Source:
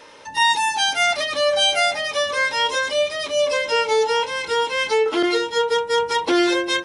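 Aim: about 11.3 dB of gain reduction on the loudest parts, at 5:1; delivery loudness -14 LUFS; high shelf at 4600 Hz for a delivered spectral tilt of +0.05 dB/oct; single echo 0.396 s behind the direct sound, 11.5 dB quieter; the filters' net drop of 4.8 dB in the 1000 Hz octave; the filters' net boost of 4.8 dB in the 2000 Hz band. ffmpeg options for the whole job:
-af "equalizer=f=1k:t=o:g=-8.5,equalizer=f=2k:t=o:g=6.5,highshelf=f=4.6k:g=7.5,acompressor=threshold=-24dB:ratio=5,aecho=1:1:396:0.266,volume=11dB"

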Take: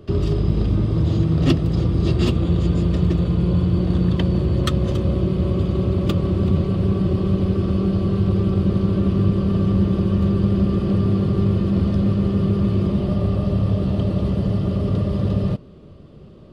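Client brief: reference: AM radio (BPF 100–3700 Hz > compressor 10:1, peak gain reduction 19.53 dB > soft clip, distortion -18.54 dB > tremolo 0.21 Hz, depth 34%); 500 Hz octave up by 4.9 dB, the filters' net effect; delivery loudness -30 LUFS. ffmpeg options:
-af "highpass=100,lowpass=3.7k,equalizer=f=500:t=o:g=7,acompressor=threshold=-30dB:ratio=10,asoftclip=threshold=-27dB,tremolo=f=0.21:d=0.34,volume=7dB"

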